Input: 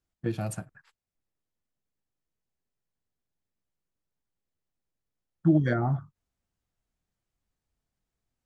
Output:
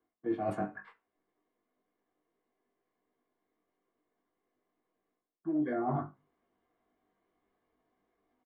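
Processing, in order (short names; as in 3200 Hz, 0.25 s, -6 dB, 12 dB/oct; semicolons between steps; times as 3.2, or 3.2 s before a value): reverb RT60 0.25 s, pre-delay 3 ms, DRR 2.5 dB; in parallel at -12 dB: soft clip -12.5 dBFS, distortion -8 dB; on the sum: three-band isolator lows -24 dB, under 280 Hz, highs -17 dB, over 2500 Hz; doubler 20 ms -5 dB; reverse; compressor 20:1, threshold -34 dBFS, peak gain reduction 26 dB; reverse; tilt -2 dB/oct; gain +2 dB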